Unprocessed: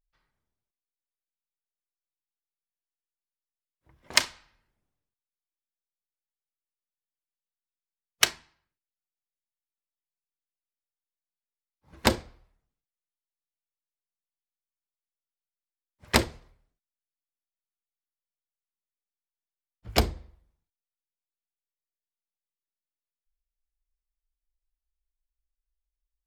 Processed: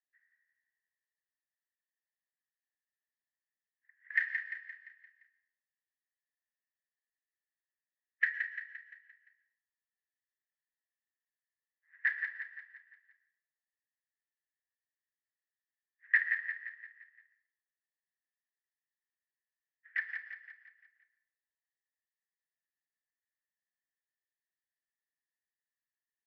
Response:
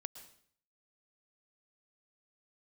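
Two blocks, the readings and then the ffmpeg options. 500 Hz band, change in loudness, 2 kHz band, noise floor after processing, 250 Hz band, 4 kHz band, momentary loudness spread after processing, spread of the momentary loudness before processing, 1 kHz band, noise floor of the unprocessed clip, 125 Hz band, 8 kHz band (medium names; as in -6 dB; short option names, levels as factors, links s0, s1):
under -40 dB, -7.5 dB, +2.0 dB, under -85 dBFS, under -40 dB, under -30 dB, 21 LU, 11 LU, -26.5 dB, under -85 dBFS, under -40 dB, under -40 dB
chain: -filter_complex "[0:a]aemphasis=mode=reproduction:type=50fm,crystalizer=i=10:c=0,acrusher=bits=4:mode=log:mix=0:aa=0.000001,asoftclip=type=tanh:threshold=0.398,asuperpass=centerf=1800:order=4:qfactor=7.9,aecho=1:1:173|346|519|692|865|1038:0.473|0.232|0.114|0.0557|0.0273|0.0134,asplit=2[s0][s1];[1:a]atrim=start_sample=2205[s2];[s1][s2]afir=irnorm=-1:irlink=0,volume=3.76[s3];[s0][s3]amix=inputs=2:normalize=0,volume=0.501"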